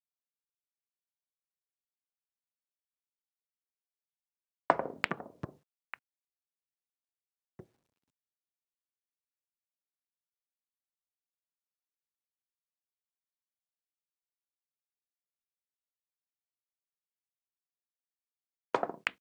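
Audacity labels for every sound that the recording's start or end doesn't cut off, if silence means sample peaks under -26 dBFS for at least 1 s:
4.700000	5.940000	sound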